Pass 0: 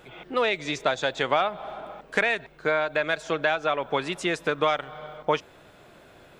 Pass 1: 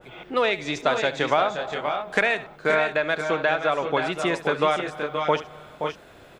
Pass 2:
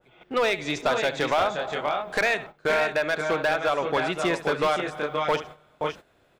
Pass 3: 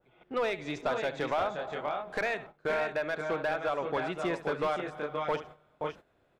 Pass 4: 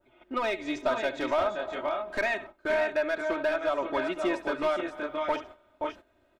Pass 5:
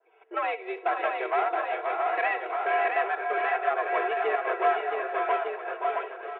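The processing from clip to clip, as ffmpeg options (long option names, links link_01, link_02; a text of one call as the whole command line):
ffmpeg -i in.wav -filter_complex "[0:a]asplit=2[link_01][link_02];[link_02]aecho=0:1:71|525|552:0.178|0.398|0.335[link_03];[link_01][link_03]amix=inputs=2:normalize=0,adynamicequalizer=threshold=0.0178:dfrequency=1900:dqfactor=0.7:tfrequency=1900:tqfactor=0.7:attack=5:release=100:ratio=0.375:range=2:mode=cutabove:tftype=highshelf,volume=2dB" out.wav
ffmpeg -i in.wav -af "agate=range=-14dB:threshold=-38dB:ratio=16:detection=peak,volume=17dB,asoftclip=hard,volume=-17dB" out.wav
ffmpeg -i in.wav -af "highshelf=frequency=2600:gain=-9,volume=-6dB" out.wav
ffmpeg -i in.wav -af "aecho=1:1:3.2:0.93" out.wav
ffmpeg -i in.wav -af "aeval=exprs='0.141*(cos(1*acos(clip(val(0)/0.141,-1,1)))-cos(1*PI/2))+0.0316*(cos(4*acos(clip(val(0)/0.141,-1,1)))-cos(4*PI/2))+0.0112*(cos(6*acos(clip(val(0)/0.141,-1,1)))-cos(6*PI/2))':channel_layout=same,highpass=frequency=280:width_type=q:width=0.5412,highpass=frequency=280:width_type=q:width=1.307,lowpass=frequency=2700:width_type=q:width=0.5176,lowpass=frequency=2700:width_type=q:width=0.7071,lowpass=frequency=2700:width_type=q:width=1.932,afreqshift=88,aecho=1:1:670|1206|1635|1978|2252:0.631|0.398|0.251|0.158|0.1" out.wav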